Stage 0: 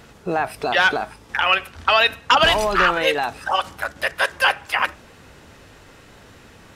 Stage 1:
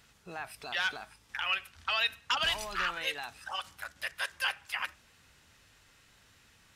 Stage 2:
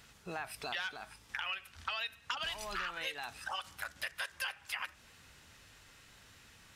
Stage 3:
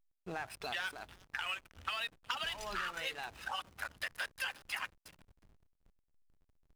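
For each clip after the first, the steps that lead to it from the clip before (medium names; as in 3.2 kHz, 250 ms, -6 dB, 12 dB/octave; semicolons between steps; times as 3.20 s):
amplifier tone stack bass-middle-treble 5-5-5; trim -3.5 dB
compression 6:1, threshold -39 dBFS, peak gain reduction 13.5 dB; trim +3 dB
coarse spectral quantiser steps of 15 dB; feedback echo behind a high-pass 362 ms, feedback 33%, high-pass 5.6 kHz, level -3 dB; hysteresis with a dead band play -43.5 dBFS; trim +1 dB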